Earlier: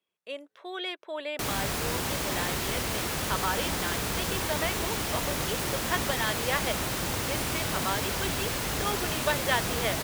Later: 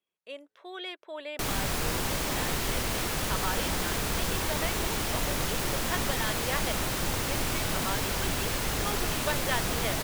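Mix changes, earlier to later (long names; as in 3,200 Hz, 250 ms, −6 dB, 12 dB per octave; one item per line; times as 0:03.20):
speech −4.0 dB
master: remove high-pass filter 51 Hz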